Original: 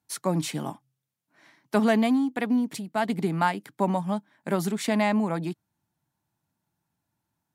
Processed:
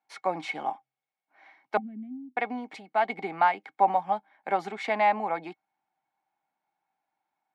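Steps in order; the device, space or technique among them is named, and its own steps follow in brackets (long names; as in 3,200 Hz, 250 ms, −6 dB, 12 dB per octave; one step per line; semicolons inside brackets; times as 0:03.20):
0:01.77–0:02.37: inverse Chebyshev band-stop filter 470–9,600 Hz, stop band 40 dB
tin-can telephone (band-pass filter 510–2,700 Hz; hollow resonant body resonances 780/2,200 Hz, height 16 dB, ringing for 65 ms)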